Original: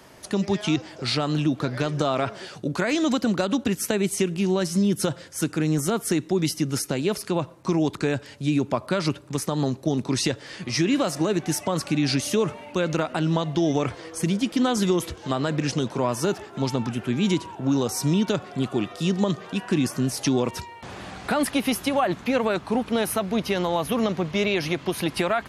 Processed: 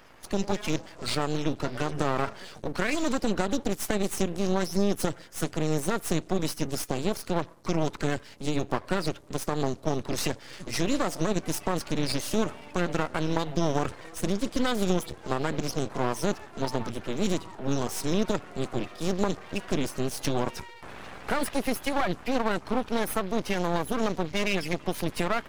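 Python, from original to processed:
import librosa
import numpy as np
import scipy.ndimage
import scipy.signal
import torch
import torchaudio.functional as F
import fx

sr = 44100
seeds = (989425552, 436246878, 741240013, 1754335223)

y = fx.spec_quant(x, sr, step_db=30)
y = np.maximum(y, 0.0)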